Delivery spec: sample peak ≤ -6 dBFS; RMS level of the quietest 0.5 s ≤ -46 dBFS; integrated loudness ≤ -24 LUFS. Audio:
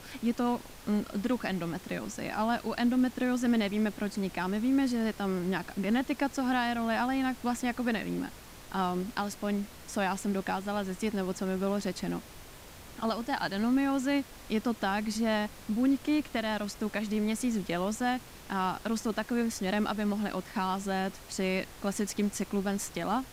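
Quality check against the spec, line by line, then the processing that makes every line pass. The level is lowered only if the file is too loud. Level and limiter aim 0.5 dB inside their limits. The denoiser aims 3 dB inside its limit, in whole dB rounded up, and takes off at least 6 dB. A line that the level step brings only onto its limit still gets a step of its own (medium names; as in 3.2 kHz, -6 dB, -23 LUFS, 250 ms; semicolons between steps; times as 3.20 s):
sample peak -19.0 dBFS: pass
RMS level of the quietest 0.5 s -49 dBFS: pass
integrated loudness -31.5 LUFS: pass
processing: none needed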